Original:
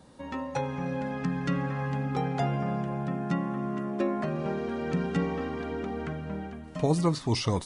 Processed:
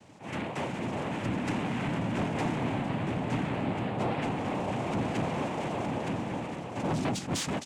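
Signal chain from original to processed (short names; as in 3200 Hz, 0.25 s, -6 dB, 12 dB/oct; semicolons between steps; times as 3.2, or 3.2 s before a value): in parallel at -2 dB: limiter -23.5 dBFS, peak gain reduction 10.5 dB; on the sum: noise vocoder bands 4; soft clip -21.5 dBFS, distortion -12 dB; on a send: echo 0.914 s -6 dB; on the sum: attack slew limiter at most 190 dB/s; gain -3.5 dB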